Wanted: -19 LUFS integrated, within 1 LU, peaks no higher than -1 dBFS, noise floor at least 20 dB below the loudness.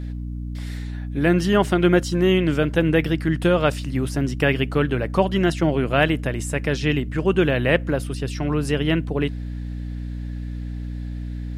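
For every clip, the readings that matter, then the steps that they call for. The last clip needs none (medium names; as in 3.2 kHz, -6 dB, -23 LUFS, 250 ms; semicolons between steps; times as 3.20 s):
hum 60 Hz; highest harmonic 300 Hz; hum level -27 dBFS; loudness -22.0 LUFS; peak level -3.0 dBFS; loudness target -19.0 LUFS
-> hum notches 60/120/180/240/300 Hz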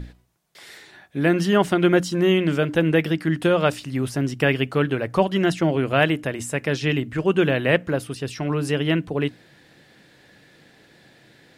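hum not found; loudness -21.5 LUFS; peak level -4.0 dBFS; loudness target -19.0 LUFS
-> trim +2.5 dB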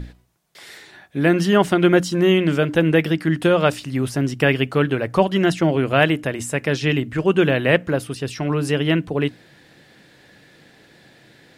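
loudness -19.0 LUFS; peak level -1.5 dBFS; noise floor -52 dBFS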